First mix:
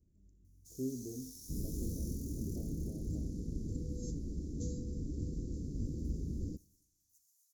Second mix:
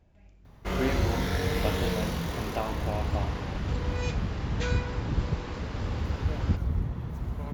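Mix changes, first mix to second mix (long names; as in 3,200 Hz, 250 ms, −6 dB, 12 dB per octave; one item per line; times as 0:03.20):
speech: add low-shelf EQ 390 Hz +9 dB
first sound: remove Chebyshev high-pass with heavy ripple 1,700 Hz, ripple 6 dB
master: remove inverse Chebyshev band-stop filter 1,000–2,500 Hz, stop band 70 dB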